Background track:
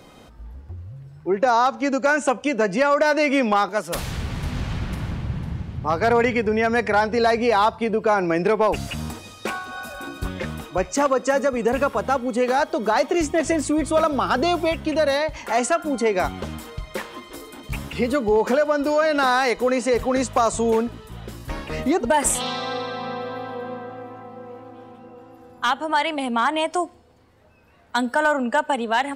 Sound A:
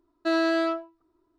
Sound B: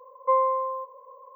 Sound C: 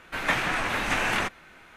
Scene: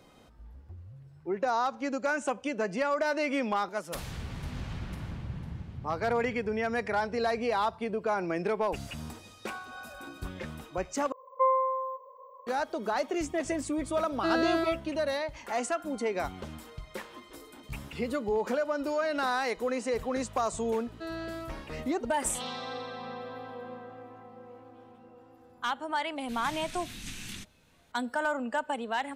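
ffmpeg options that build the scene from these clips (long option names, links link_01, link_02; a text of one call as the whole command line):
ffmpeg -i bed.wav -i cue0.wav -i cue1.wav -i cue2.wav -filter_complex "[1:a]asplit=2[link_01][link_02];[0:a]volume=-10.5dB[link_03];[3:a]firequalizer=gain_entry='entry(200,0);entry(560,-26);entry(3600,1);entry(7800,4)':delay=0.05:min_phase=1[link_04];[link_03]asplit=2[link_05][link_06];[link_05]atrim=end=11.124[link_07];[2:a]atrim=end=1.35,asetpts=PTS-STARTPTS,volume=-3dB[link_08];[link_06]atrim=start=12.466[link_09];[link_01]atrim=end=1.38,asetpts=PTS-STARTPTS,volume=-4.5dB,afade=type=in:duration=0.004:curve=hsin,afade=type=out:start_time=1.376:duration=0.004:curve=hsin,adelay=13980[link_10];[link_02]atrim=end=1.38,asetpts=PTS-STARTPTS,volume=-14.5dB,afade=type=in:duration=0.004:curve=hsin,afade=type=out:start_time=1.376:duration=0.004:curve=hsin,adelay=20750[link_11];[link_04]atrim=end=1.76,asetpts=PTS-STARTPTS,volume=-8.5dB,afade=type=in:duration=0.004:curve=hsin,afade=type=out:start_time=1.756:duration=0.004:curve=hsin,adelay=26160[link_12];[link_07][link_08]acrossfade=duration=0.004:curve1=hsin:curve2=hsin[link_13];[link_13][link_09]acrossfade=duration=0.004:curve1=hsin:curve2=hsin[link_14];[link_14][link_10][link_11][link_12]amix=inputs=4:normalize=0" out.wav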